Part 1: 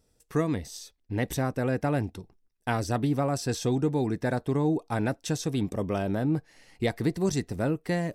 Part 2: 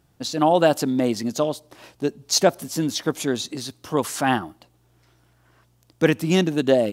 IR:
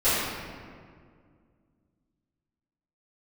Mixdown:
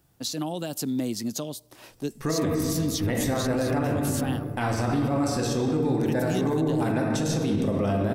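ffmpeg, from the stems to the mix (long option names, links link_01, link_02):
-filter_complex "[0:a]adelay=1900,volume=2.5dB,asplit=2[link_01][link_02];[link_02]volume=-14.5dB[link_03];[1:a]highshelf=frequency=9900:gain=11.5,alimiter=limit=-10.5dB:level=0:latency=1:release=182,acrossover=split=310|3000[link_04][link_05][link_06];[link_05]acompressor=threshold=-41dB:ratio=2[link_07];[link_04][link_07][link_06]amix=inputs=3:normalize=0,volume=-3dB[link_08];[2:a]atrim=start_sample=2205[link_09];[link_03][link_09]afir=irnorm=-1:irlink=0[link_10];[link_01][link_08][link_10]amix=inputs=3:normalize=0,alimiter=limit=-17dB:level=0:latency=1:release=57"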